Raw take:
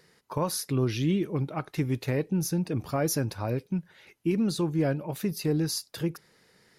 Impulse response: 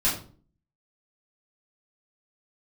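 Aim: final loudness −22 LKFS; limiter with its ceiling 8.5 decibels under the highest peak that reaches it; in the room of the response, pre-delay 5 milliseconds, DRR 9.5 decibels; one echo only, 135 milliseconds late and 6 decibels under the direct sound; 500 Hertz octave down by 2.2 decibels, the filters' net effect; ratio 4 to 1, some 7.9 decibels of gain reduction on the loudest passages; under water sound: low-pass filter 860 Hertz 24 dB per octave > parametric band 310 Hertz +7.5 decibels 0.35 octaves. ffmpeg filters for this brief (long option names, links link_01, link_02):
-filter_complex "[0:a]equalizer=frequency=500:width_type=o:gain=-6,acompressor=threshold=-33dB:ratio=4,alimiter=level_in=7dB:limit=-24dB:level=0:latency=1,volume=-7dB,aecho=1:1:135:0.501,asplit=2[link_01][link_02];[1:a]atrim=start_sample=2205,adelay=5[link_03];[link_02][link_03]afir=irnorm=-1:irlink=0,volume=-21dB[link_04];[link_01][link_04]amix=inputs=2:normalize=0,lowpass=frequency=860:width=0.5412,lowpass=frequency=860:width=1.3066,equalizer=frequency=310:width_type=o:width=0.35:gain=7.5,volume=15.5dB"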